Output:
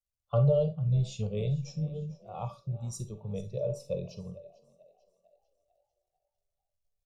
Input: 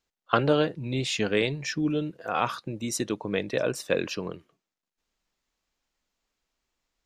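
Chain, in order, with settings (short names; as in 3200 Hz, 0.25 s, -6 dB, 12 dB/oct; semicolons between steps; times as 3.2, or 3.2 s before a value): frequency-shifting echo 0.446 s, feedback 57%, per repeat +45 Hz, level -14 dB; crackle 210/s -45 dBFS; low shelf 240 Hz +8 dB; fixed phaser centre 690 Hz, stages 4; on a send at -8 dB: reverb RT60 0.30 s, pre-delay 39 ms; on the sum: wow and flutter 17 cents; tone controls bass +9 dB, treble +5 dB; resonator 580 Hz, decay 0.26 s, harmonics all, mix 70%; spectral expander 1.5:1; gain +1.5 dB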